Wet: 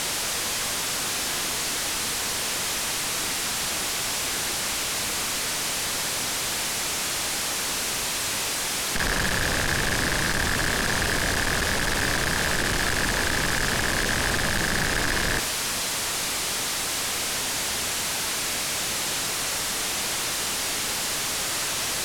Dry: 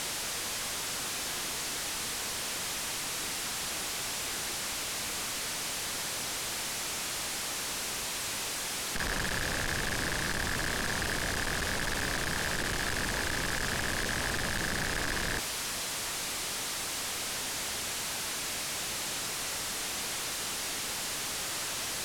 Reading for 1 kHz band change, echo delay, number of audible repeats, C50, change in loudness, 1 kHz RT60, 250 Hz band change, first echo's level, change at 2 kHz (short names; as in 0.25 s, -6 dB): +8.0 dB, none, none, 13.0 dB, +8.0 dB, 0.95 s, +8.0 dB, none, +8.0 dB